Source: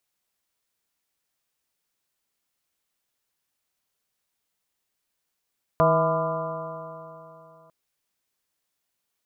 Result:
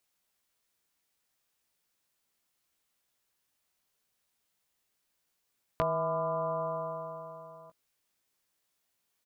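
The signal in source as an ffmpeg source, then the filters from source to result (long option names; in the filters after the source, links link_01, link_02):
-f lavfi -i "aevalsrc='0.0708*pow(10,-3*t/3.07)*sin(2*PI*159.24*t)+0.0251*pow(10,-3*t/3.07)*sin(2*PI*319.9*t)+0.0596*pow(10,-3*t/3.07)*sin(2*PI*483.4*t)+0.126*pow(10,-3*t/3.07)*sin(2*PI*651.09*t)+0.0178*pow(10,-3*t/3.07)*sin(2*PI*824.27*t)+0.0841*pow(10,-3*t/3.07)*sin(2*PI*1004.2*t)+0.0631*pow(10,-3*t/3.07)*sin(2*PI*1192*t)+0.0211*pow(10,-3*t/3.07)*sin(2*PI*1388.75*t)':duration=1.9:sample_rate=44100"
-filter_complex "[0:a]acompressor=threshold=-30dB:ratio=6,asplit=2[link_01][link_02];[link_02]adelay=17,volume=-8.5dB[link_03];[link_01][link_03]amix=inputs=2:normalize=0"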